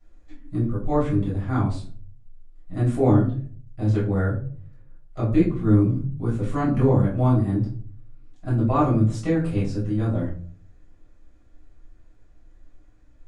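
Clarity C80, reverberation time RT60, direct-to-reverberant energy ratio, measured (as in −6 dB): 11.0 dB, 0.45 s, −9.5 dB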